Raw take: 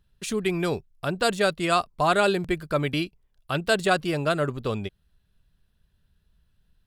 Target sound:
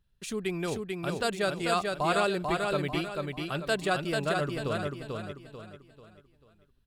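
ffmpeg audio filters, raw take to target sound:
-af "aecho=1:1:441|882|1323|1764|2205:0.668|0.254|0.0965|0.0367|0.0139,volume=-6.5dB"

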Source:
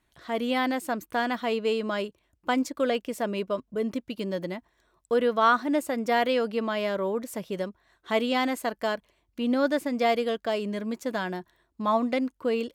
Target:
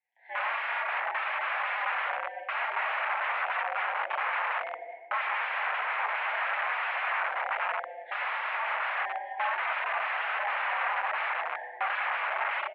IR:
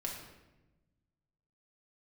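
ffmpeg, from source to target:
-filter_complex "[0:a]asuperstop=centerf=1100:order=8:qfactor=1.5,asettb=1/sr,asplit=3[a][b][c];[a]atrim=end=3.364[d];[b]atrim=start=3.36:end=4,asetpts=PTS-STARTPTS,afade=t=in:d=0.004:c=qsin,afade=t=out:st=0.636:d=0.004:c=qsin,aeval=exprs='0.112*(cos(1*acos(clip(val(0)/0.112,-1,1)))-cos(1*PI/2))+0.002*(cos(6*acos(clip(val(0)/0.112,-1,1)))-cos(6*PI/2))+0.00794*(cos(7*acos(clip(val(0)/0.112,-1,1)))-cos(7*PI/2))+0.00158*(cos(8*acos(clip(val(0)/0.112,-1,1)))-cos(8*PI/2))':c=same[e];[c]atrim=start=3.996[f];[d][e]acrossfade=d=0.004:c1=hsin:c2=qsin[g];[g][f]acrossfade=d=0.004:c1=qsin:c2=hsin,asettb=1/sr,asplit=3[h][i][j];[h]atrim=end=5.864[k];[i]atrim=start=5.86:end=6.4,asetpts=PTS-STARTPTS,afade=t=in:d=0.004:c=qsin,afade=t=out:st=0.536:d=0.004:c=qsin,acompressor=threshold=-26dB:ratio=6[l];[j]atrim=start=6.396[m];[k][l]acrossfade=d=0.004:c1=hsin:c2=qsin[n];[n][m]acrossfade=d=0.004:c1=qsin:c2=hsin,flanger=delay=7.8:depth=9.9:regen=40:speed=0.43:shape=triangular,asoftclip=type=tanh:threshold=-18.5dB[o];[1:a]atrim=start_sample=2205,asetrate=37485,aresample=44100[p];[o][p]afir=irnorm=-1:irlink=0,dynaudnorm=f=210:g=3:m=15.5dB,asplit=2[q][r];[r]adelay=373.2,volume=-14dB,highshelf=f=4k:g=-8.4[s];[q][s]amix=inputs=2:normalize=0,aeval=exprs='(mod(6.31*val(0)+1,2)-1)/6.31':c=same,highpass=f=580:t=q:w=0.5412,highpass=f=580:t=q:w=1.307,lowpass=f=2.3k:t=q:w=0.5176,lowpass=f=2.3k:t=q:w=0.7071,lowpass=f=2.3k:t=q:w=1.932,afreqshift=130,volume=-5.5dB"

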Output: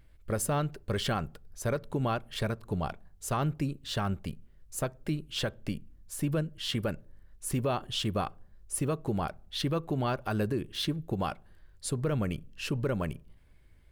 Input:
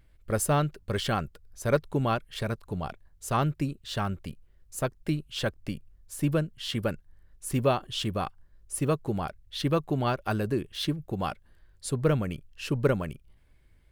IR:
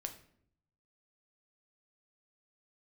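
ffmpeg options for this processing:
-filter_complex "[0:a]alimiter=limit=-22dB:level=0:latency=1:release=124,asplit=2[a][b];[1:a]atrim=start_sample=2205,asetrate=61740,aresample=44100,highshelf=f=2.4k:g=-10.5[c];[b][c]afir=irnorm=-1:irlink=0,volume=-8.5dB[d];[a][d]amix=inputs=2:normalize=0"

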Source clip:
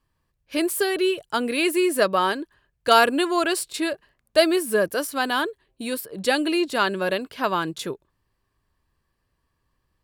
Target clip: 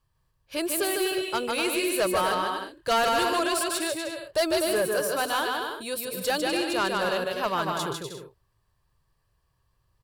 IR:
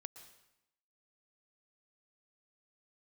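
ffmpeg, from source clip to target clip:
-af "equalizer=f=125:t=o:w=1:g=6,equalizer=f=250:t=o:w=1:g=-12,equalizer=f=2k:t=o:w=1:g=-5,aecho=1:1:150|247.5|310.9|352.1|378.8:0.631|0.398|0.251|0.158|0.1,asoftclip=type=tanh:threshold=-18.5dB"

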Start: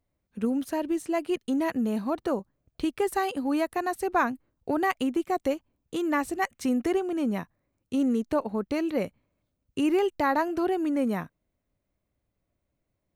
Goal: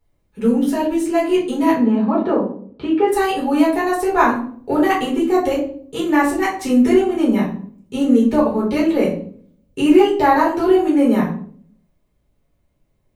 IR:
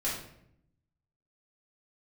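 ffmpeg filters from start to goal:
-filter_complex "[0:a]asettb=1/sr,asplit=3[a][b][c];[a]atrim=end=1.734[d];[b]atrim=start=1.73:end=3.12,asetpts=PTS-STARTPTS,afade=t=in:d=0.004:c=qsin,afade=t=out:st=1.386:d=0.004:c=qsin,highpass=110,lowpass=2.3k[e];[c]atrim=start=3.116[f];[d][e]acrossfade=d=0.004:c1=hsin:c2=qsin[g];[g][f]acrossfade=d=0.004:c1=qsin:c2=hsin[h];[1:a]atrim=start_sample=2205,asetrate=70560,aresample=44100[i];[h][i]afir=irnorm=-1:irlink=0,volume=8dB"

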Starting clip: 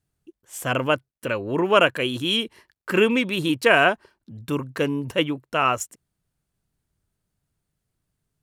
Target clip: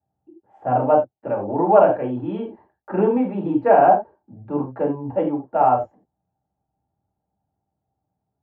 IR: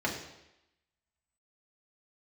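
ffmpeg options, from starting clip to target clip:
-filter_complex "[0:a]lowpass=f=800:t=q:w=7.9[a];[1:a]atrim=start_sample=2205,atrim=end_sample=3969,asetrate=40131,aresample=44100[b];[a][b]afir=irnorm=-1:irlink=0,volume=-11dB"

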